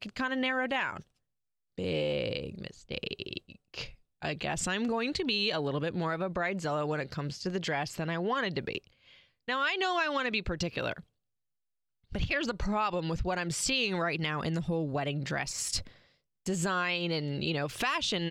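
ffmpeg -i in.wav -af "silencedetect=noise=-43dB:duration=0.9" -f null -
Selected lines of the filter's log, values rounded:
silence_start: 11.00
silence_end: 12.12 | silence_duration: 1.12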